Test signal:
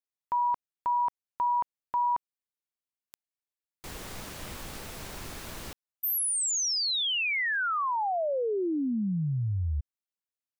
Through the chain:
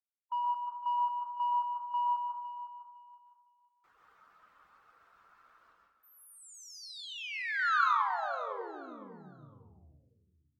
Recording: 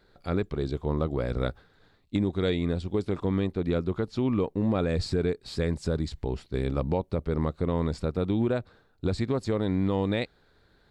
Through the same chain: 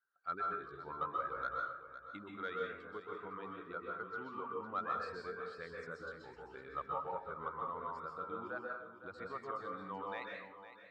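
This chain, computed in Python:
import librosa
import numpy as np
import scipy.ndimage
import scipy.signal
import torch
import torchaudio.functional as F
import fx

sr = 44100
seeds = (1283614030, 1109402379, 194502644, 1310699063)

p1 = fx.bin_expand(x, sr, power=1.5)
p2 = fx.dereverb_blind(p1, sr, rt60_s=0.75)
p3 = fx.rider(p2, sr, range_db=5, speed_s=2.0)
p4 = p2 + (p3 * librosa.db_to_amplitude(-3.0))
p5 = fx.bandpass_q(p4, sr, hz=1300.0, q=5.1)
p6 = 10.0 ** (-26.5 / 20.0) * np.tanh(p5 / 10.0 ** (-26.5 / 20.0))
p7 = fx.quant_float(p6, sr, bits=8)
p8 = p7 + fx.echo_feedback(p7, sr, ms=508, feedback_pct=23, wet_db=-12.0, dry=0)
y = fx.rev_plate(p8, sr, seeds[0], rt60_s=0.64, hf_ratio=0.65, predelay_ms=115, drr_db=-1.5)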